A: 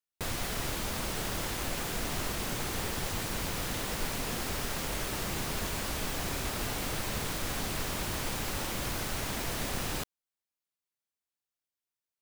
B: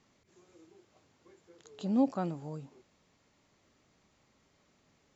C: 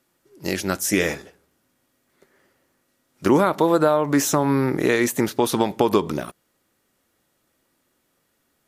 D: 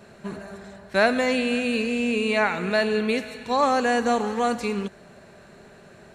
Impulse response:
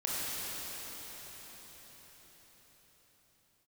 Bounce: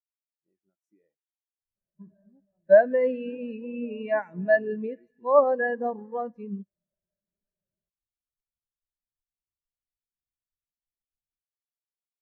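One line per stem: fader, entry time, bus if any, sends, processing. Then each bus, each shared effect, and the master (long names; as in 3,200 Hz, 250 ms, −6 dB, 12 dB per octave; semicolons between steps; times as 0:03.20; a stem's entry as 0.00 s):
−14.5 dB, 1.40 s, no send, no processing
−8.5 dB, 0.35 s, no send, parametric band 260 Hz −4.5 dB 0.24 octaves
−14.5 dB, 0.00 s, no send, parametric band 760 Hz +5 dB 0.76 octaves; brickwall limiter −9.5 dBFS, peak gain reduction 9.5 dB
+2.0 dB, 1.75 s, no send, EQ curve with evenly spaced ripples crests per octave 1.2, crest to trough 6 dB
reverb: not used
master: every bin expanded away from the loudest bin 2.5 to 1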